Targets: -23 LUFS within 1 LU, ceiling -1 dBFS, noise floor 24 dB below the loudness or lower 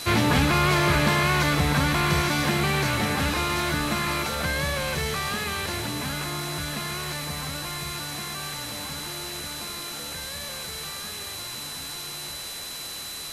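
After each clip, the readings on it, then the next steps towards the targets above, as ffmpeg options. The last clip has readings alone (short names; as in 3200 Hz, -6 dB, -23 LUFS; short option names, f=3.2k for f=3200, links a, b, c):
steady tone 4000 Hz; tone level -37 dBFS; noise floor -36 dBFS; noise floor target -50 dBFS; loudness -26.0 LUFS; peak -8.0 dBFS; loudness target -23.0 LUFS
-> -af "bandreject=f=4k:w=30"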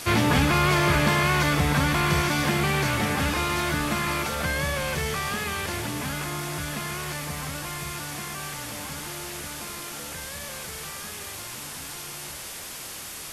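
steady tone none; noise floor -38 dBFS; noise floor target -51 dBFS
-> -af "afftdn=nr=13:nf=-38"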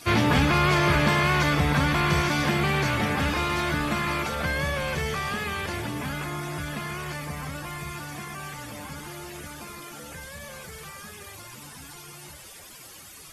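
noise floor -46 dBFS; noise floor target -49 dBFS
-> -af "afftdn=nr=6:nf=-46"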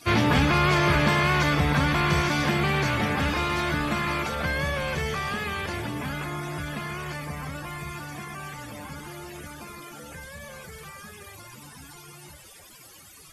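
noise floor -49 dBFS; loudness -25.0 LUFS; peak -9.0 dBFS; loudness target -23.0 LUFS
-> -af "volume=2dB"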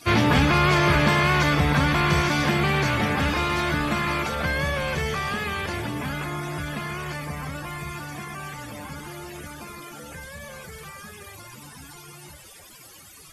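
loudness -23.0 LUFS; peak -7.0 dBFS; noise floor -47 dBFS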